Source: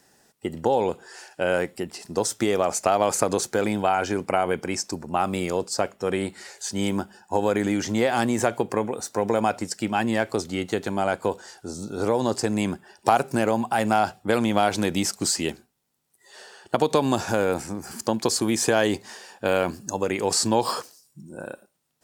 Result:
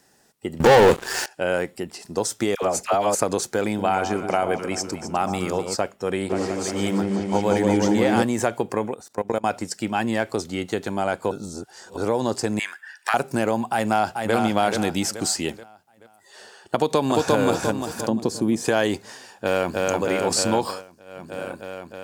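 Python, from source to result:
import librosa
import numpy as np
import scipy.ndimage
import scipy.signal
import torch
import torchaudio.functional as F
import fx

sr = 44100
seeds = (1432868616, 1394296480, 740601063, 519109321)

y = fx.leveller(x, sr, passes=5, at=(0.6, 1.26))
y = fx.dispersion(y, sr, late='lows', ms=77.0, hz=810.0, at=(2.55, 3.15))
y = fx.echo_alternate(y, sr, ms=127, hz=1100.0, feedback_pct=65, wet_db=-7.0, at=(3.66, 5.76))
y = fx.echo_opening(y, sr, ms=177, hz=750, octaves=1, feedback_pct=70, wet_db=0, at=(6.29, 8.22), fade=0.02)
y = fx.level_steps(y, sr, step_db=22, at=(8.94, 9.46))
y = fx.highpass_res(y, sr, hz=1700.0, q=5.4, at=(12.59, 13.14))
y = fx.echo_throw(y, sr, start_s=13.72, length_s=0.62, ms=430, feedback_pct=40, wet_db=-5.0)
y = fx.echo_throw(y, sr, start_s=16.75, length_s=0.61, ms=350, feedback_pct=45, wet_db=-0.5)
y = fx.curve_eq(y, sr, hz=(110.0, 190.0, 1500.0), db=(0, 5, -9), at=(18.08, 18.64), fade=0.02)
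y = fx.echo_throw(y, sr, start_s=19.15, length_s=0.6, ms=310, feedback_pct=80, wet_db=-1.5)
y = fx.edit(y, sr, fx.reverse_span(start_s=11.31, length_s=0.66),
    fx.fade_down_up(start_s=20.55, length_s=0.8, db=-17.0, fade_s=0.3), tone=tone)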